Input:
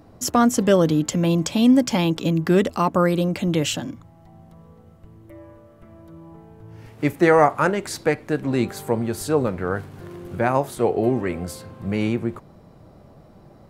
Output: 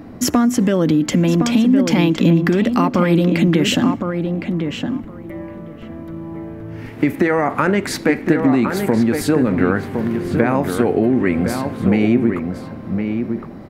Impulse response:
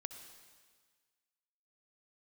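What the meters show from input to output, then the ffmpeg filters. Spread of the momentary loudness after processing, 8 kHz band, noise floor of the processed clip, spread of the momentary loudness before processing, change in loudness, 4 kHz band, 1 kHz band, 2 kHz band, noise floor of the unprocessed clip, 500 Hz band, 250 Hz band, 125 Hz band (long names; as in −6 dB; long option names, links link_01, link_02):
16 LU, +2.0 dB, −33 dBFS, 12 LU, +4.0 dB, +4.5 dB, +0.5 dB, +5.0 dB, −50 dBFS, +2.0 dB, +7.0 dB, +5.5 dB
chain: -filter_complex "[0:a]equalizer=frequency=250:width_type=o:width=1:gain=11,equalizer=frequency=2000:width_type=o:width=1:gain=8,equalizer=frequency=8000:width_type=o:width=1:gain=-4,alimiter=limit=-8dB:level=0:latency=1:release=32,acompressor=threshold=-19dB:ratio=6,asplit=2[link_01][link_02];[link_02]adelay=1063,lowpass=frequency=2100:poles=1,volume=-5.5dB,asplit=2[link_03][link_04];[link_04]adelay=1063,lowpass=frequency=2100:poles=1,volume=0.15,asplit=2[link_05][link_06];[link_06]adelay=1063,lowpass=frequency=2100:poles=1,volume=0.15[link_07];[link_01][link_03][link_05][link_07]amix=inputs=4:normalize=0,asplit=2[link_08][link_09];[1:a]atrim=start_sample=2205,afade=type=out:start_time=0.36:duration=0.01,atrim=end_sample=16317,asetrate=52920,aresample=44100[link_10];[link_09][link_10]afir=irnorm=-1:irlink=0,volume=-12.5dB[link_11];[link_08][link_11]amix=inputs=2:normalize=0,volume=6dB"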